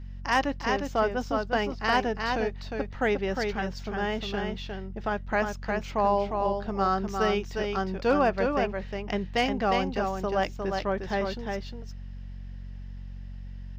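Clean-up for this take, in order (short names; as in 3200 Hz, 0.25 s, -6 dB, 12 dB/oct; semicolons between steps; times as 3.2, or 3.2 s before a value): clip repair -13.5 dBFS; de-hum 46.1 Hz, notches 5; inverse comb 0.356 s -4.5 dB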